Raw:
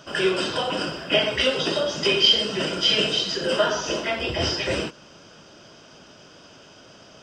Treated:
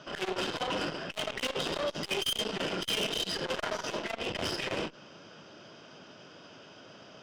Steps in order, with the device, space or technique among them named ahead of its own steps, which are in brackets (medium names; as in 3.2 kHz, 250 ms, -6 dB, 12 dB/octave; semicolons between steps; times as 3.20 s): valve radio (band-pass 110–4500 Hz; valve stage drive 26 dB, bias 0.65; transformer saturation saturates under 550 Hz); trim +1 dB